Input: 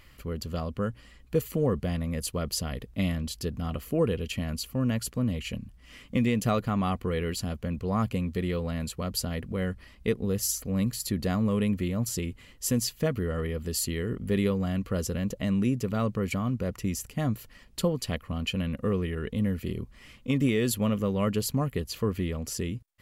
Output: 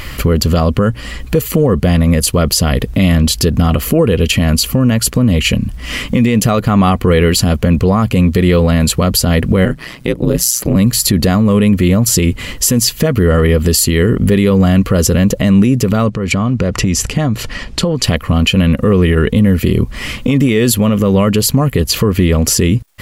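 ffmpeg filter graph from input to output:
-filter_complex "[0:a]asettb=1/sr,asplit=3[a][b][c];[a]atrim=end=9.654[d];[b]atrim=start=9.65:end=10.76,asetpts=PTS-STARTPTS,afade=t=in:d=0.004:c=qsin,afade=t=out:st=1.106:d=0.004:c=qsin,highpass=f=95:w=0.5412,highpass=f=95:w=1.3066,aeval=exprs='val(0)*sin(2*PI*61*n/s)':c=same[e];[c]atrim=start=10.756[f];[d][e]acrossfade=d=0.004:c1=hsin:c2=qsin[g];[g][f]acrossfade=d=0.004:c1=qsin:c2=hsin,asettb=1/sr,asplit=3[h][i][j];[h]atrim=end=16.094[k];[i]atrim=start=16.09:end=18.04,asetpts=PTS-STARTPTS,afade=t=in:d=0.004:c=qsin,afade=t=out:st=1.946:d=0.004:c=qsin,lowpass=7k,acompressor=threshold=-37dB:ratio=6:attack=3.2:release=140:knee=1:detection=peak[l];[j]atrim=start=18.036[m];[k][l]acrossfade=d=0.004:c1=hsin:c2=qsin[n];[n][m]acrossfade=d=0.004:c1=qsin:c2=hsin,acompressor=threshold=-38dB:ratio=2.5,alimiter=level_in=29.5dB:limit=-1dB:release=50:level=0:latency=1,volume=-1dB"

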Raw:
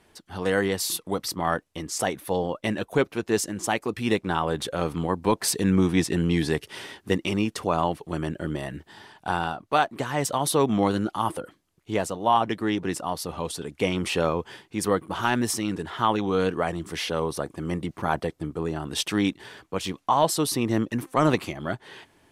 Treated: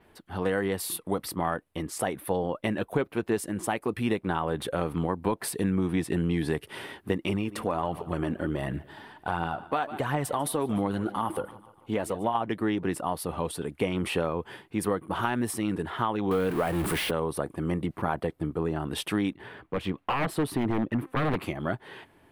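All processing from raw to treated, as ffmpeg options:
-filter_complex "[0:a]asettb=1/sr,asplit=3[a][b][c];[a]atrim=end=7.294[d];[b]atrim=start=7.29:end=12.35,asetpts=PTS-STARTPTS,afade=t=in:d=0.004:c=qsin,afade=t=out:st=5.056:d=0.004:c=qsin,aecho=1:1:146|292|438|584:0.0891|0.0481|0.026|0.014,atrim=end_sample=223146,acompressor=threshold=-24dB:ratio=2:attack=3.2:release=140:knee=1:detection=peak,aphaser=in_gain=1:out_gain=1:delay=4.5:decay=0.36:speed=1.4:type=triangular[e];[c]atrim=start=12.346[f];[d][e]acrossfade=d=0.004:c1=hsin:c2=qsin[g];[g][f]acrossfade=d=0.004:c1=qsin:c2=hsin,asettb=1/sr,asplit=3[h][i][j];[h]atrim=end=16.314[k];[i]atrim=start=16.31:end=17.11,asetpts=PTS-STARTPTS,afade=t=in:d=0.004:c=qsin,afade=t=out:st=0.796:d=0.004:c=qsin,aeval=exprs='val(0)+0.5*0.0501*sgn(val(0))':c=same,acompressor=mode=upward:threshold=-26dB:ratio=2.5:attack=3.2:release=140:knee=2.83:detection=peak[l];[j]atrim=start=17.106[m];[k][l]acrossfade=d=0.004:c1=hsin:c2=qsin[n];[n][m]acrossfade=d=0.004:c1=qsin:c2=hsin,asettb=1/sr,asplit=3[o][p][q];[o]atrim=end=19.334[r];[p]atrim=start=19.33:end=21.42,asetpts=PTS-STARTPTS,afade=t=in:d=0.004:c=qsin,afade=t=out:st=2.086:d=0.004:c=qsin,aeval=exprs='0.106*(abs(mod(val(0)/0.106+3,4)-2)-1)':c=same,bass=f=250:g=2,treble=f=4k:g=-11[s];[q]atrim=start=21.416[t];[r][s]acrossfade=d=0.004:c1=hsin:c2=qsin[u];[u][t]acrossfade=d=0.004:c1=qsin:c2=hsin,adynamicequalizer=threshold=0.00355:dfrequency=9500:dqfactor=2.1:tfrequency=9500:tqfactor=2.1:attack=5:release=100:ratio=0.375:range=3:mode=boostabove:tftype=bell,acompressor=threshold=-24dB:ratio=6,equalizer=f=6.2k:t=o:w=1.3:g=-14,volume=1.5dB"

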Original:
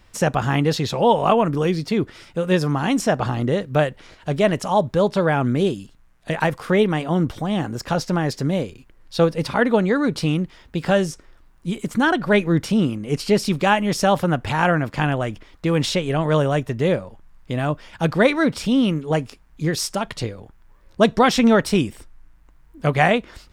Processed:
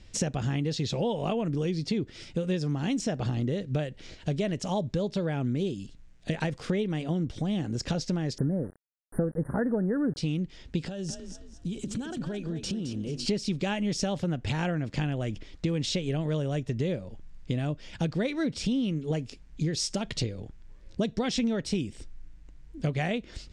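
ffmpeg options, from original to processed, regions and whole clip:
-filter_complex "[0:a]asettb=1/sr,asplit=3[a][b][c];[a]atrim=end=8.384[d];[b]atrim=start=8.38:end=10.17,asetpts=PTS-STARTPTS,afade=t=in:d=0.004:c=qsin,afade=t=out:st=1.786:d=0.004:c=qsin,acontrast=52,aeval=exprs='val(0)*gte(abs(val(0)),0.0447)':c=same,asuperstop=centerf=4300:order=20:qfactor=0.57[e];[c]atrim=start=10.166[f];[d][e]acrossfade=d=0.004:c1=hsin:c2=qsin[g];[g][f]acrossfade=d=0.004:c1=qsin:c2=hsin,asettb=1/sr,asplit=3[h][i][j];[h]atrim=end=10.874[k];[i]atrim=start=10.87:end=13.26,asetpts=PTS-STARTPTS,afade=t=in:d=0.004:c=qsin,afade=t=out:st=2.386:d=0.004:c=qsin,equalizer=f=2.1k:t=o:w=0.25:g=-10,acompressor=threshold=-30dB:ratio=20:attack=3.2:release=140:knee=1:detection=peak,asplit=5[l][m][n][o][p];[m]adelay=216,afreqshift=33,volume=-9dB[q];[n]adelay=432,afreqshift=66,volume=-18.9dB[r];[o]adelay=648,afreqshift=99,volume=-28.8dB[s];[p]adelay=864,afreqshift=132,volume=-38.7dB[t];[l][q][r][s][t]amix=inputs=5:normalize=0,atrim=end_sample=105399[u];[j]atrim=start=13.256[v];[k][u]acrossfade=d=0.004:c1=hsin:c2=qsin[w];[w][v]acrossfade=d=0.004:c1=qsin:c2=hsin,lowpass=f=7.7k:w=0.5412,lowpass=f=7.7k:w=1.3066,equalizer=f=1.1k:w=0.87:g=-14.5,acompressor=threshold=-29dB:ratio=6,volume=3dB"

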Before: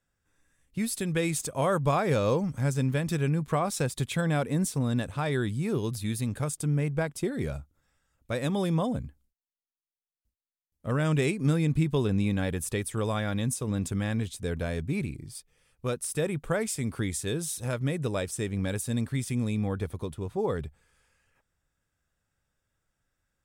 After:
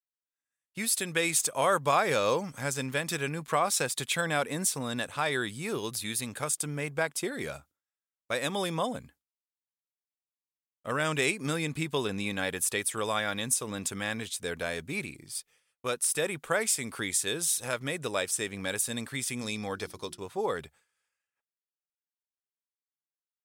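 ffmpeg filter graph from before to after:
-filter_complex "[0:a]asettb=1/sr,asplit=3[a][b][c];[a]atrim=end=19.414[d];[b]atrim=start=19.41:end=20.21,asetpts=PTS-STARTPTS,afade=t=in:d=0.004:c=qsin,afade=t=out:st=0.796:d=0.004:c=qsin,agate=range=-33dB:threshold=-40dB:ratio=3:release=100:detection=peak,equalizer=f=5.2k:t=o:w=0.59:g=12.5,bandreject=f=60:t=h:w=6,bandreject=f=120:t=h:w=6,bandreject=f=180:t=h:w=6,bandreject=f=240:t=h:w=6,bandreject=f=300:t=h:w=6,bandreject=f=360:t=h:w=6[e];[c]atrim=start=20.206[f];[d][e]acrossfade=d=0.004:c1=hsin:c2=qsin[g];[g][f]acrossfade=d=0.004:c1=qsin:c2=hsin,highpass=f=1.1k:p=1,agate=range=-33dB:threshold=-59dB:ratio=3:detection=peak,volume=6.5dB"

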